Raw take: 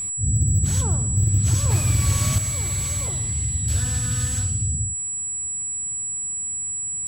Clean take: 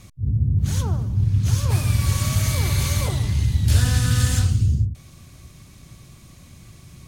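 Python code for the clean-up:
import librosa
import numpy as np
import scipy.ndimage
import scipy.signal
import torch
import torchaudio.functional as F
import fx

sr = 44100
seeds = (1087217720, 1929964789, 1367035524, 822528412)

y = fx.fix_declip(x, sr, threshold_db=-12.5)
y = fx.notch(y, sr, hz=7800.0, q=30.0)
y = fx.fix_level(y, sr, at_s=2.38, step_db=7.0)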